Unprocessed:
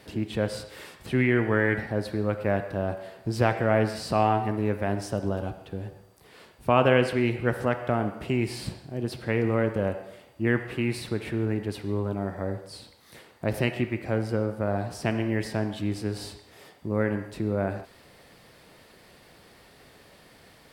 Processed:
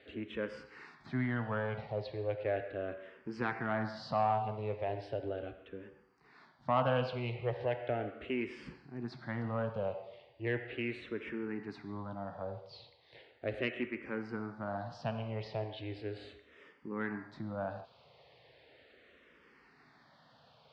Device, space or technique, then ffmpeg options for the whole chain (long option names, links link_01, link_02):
barber-pole phaser into a guitar amplifier: -filter_complex "[0:a]asplit=2[link_01][link_02];[link_02]afreqshift=-0.37[link_03];[link_01][link_03]amix=inputs=2:normalize=1,asoftclip=type=tanh:threshold=-15dB,highpass=87,equalizer=frequency=93:width_type=q:width=4:gain=-7,equalizer=frequency=190:width_type=q:width=4:gain=-8,equalizer=frequency=330:width_type=q:width=4:gain=-5,lowpass=frequency=4200:width=0.5412,lowpass=frequency=4200:width=1.3066,volume=-4.5dB"